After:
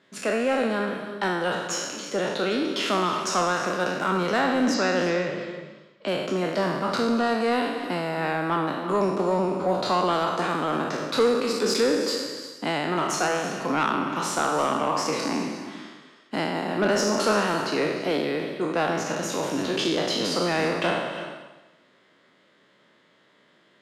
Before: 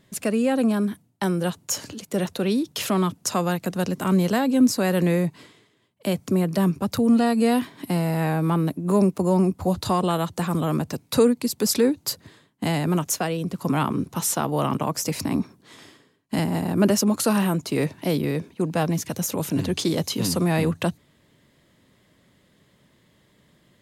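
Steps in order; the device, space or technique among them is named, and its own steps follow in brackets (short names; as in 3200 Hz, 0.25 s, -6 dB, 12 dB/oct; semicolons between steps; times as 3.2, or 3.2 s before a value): spectral trails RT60 1.05 s; intercom (BPF 330–4500 Hz; bell 1400 Hz +6.5 dB 0.38 oct; soft clip -14.5 dBFS, distortion -18 dB); 4.74–6.08 steep low-pass 7400 Hz 36 dB/oct; non-linear reverb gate 0.38 s rising, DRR 9.5 dB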